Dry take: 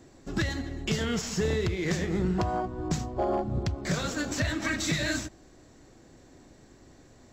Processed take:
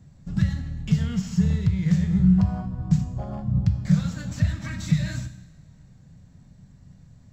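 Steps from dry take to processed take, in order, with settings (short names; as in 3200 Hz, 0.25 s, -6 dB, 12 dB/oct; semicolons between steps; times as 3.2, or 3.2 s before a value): resonant low shelf 230 Hz +13 dB, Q 3; resonator 190 Hz, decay 0.87 s, harmonics odd, mix 70%; two-slope reverb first 0.81 s, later 2.8 s, from -18 dB, DRR 10 dB; gain +2 dB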